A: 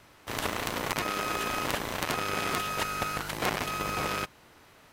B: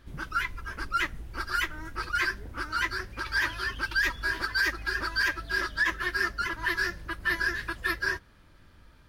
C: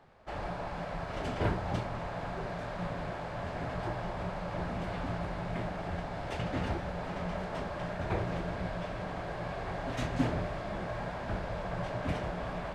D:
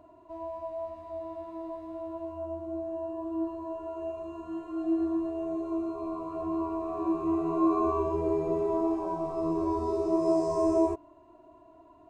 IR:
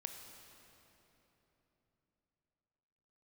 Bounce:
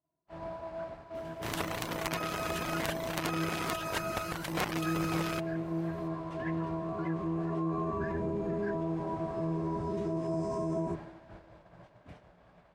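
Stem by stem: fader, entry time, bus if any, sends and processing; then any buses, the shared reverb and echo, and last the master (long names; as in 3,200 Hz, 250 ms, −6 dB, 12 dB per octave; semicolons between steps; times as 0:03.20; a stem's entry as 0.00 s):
−4.5 dB, 1.15 s, no bus, send −13.5 dB, reverb reduction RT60 0.71 s
−13.0 dB, 0.60 s, no bus, no send, LFO wah 1.9 Hz 220–2,200 Hz, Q 4.1
−13.5 dB, 0.00 s, bus A, send −14 dB, speech leveller within 3 dB 0.5 s
−5.0 dB, 0.00 s, bus A, send −12.5 dB, sub-octave generator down 1 octave, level +3 dB
bus A: 0.0 dB, high-pass filter 42 Hz; brickwall limiter −27.5 dBFS, peak gain reduction 11 dB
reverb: on, RT60 3.6 s, pre-delay 20 ms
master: downward expander −40 dBFS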